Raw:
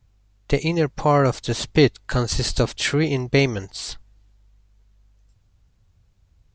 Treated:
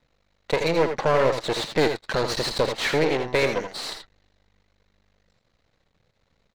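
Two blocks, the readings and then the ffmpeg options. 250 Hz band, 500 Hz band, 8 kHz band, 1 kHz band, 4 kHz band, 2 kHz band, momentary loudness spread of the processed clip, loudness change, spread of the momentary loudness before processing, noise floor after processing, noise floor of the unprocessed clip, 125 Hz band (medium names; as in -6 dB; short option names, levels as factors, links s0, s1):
-6.5 dB, 0.0 dB, -6.0 dB, -1.0 dB, -1.5 dB, 0.0 dB, 8 LU, -2.5 dB, 12 LU, -71 dBFS, -61 dBFS, -10.5 dB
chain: -filter_complex "[0:a]equalizer=f=100:t=o:w=0.33:g=-10,equalizer=f=160:t=o:w=0.33:g=7,equalizer=f=500:t=o:w=0.33:g=10,equalizer=f=2000:t=o:w=0.33:g=6,equalizer=f=4000:t=o:w=0.33:g=8,aeval=exprs='max(val(0),0)':c=same,asplit=2[s0][s1];[s1]highpass=f=720:p=1,volume=10,asoftclip=type=tanh:threshold=0.531[s2];[s0][s2]amix=inputs=2:normalize=0,lowpass=f=1900:p=1,volume=0.501,aecho=1:1:80|89:0.376|0.211,volume=0.531"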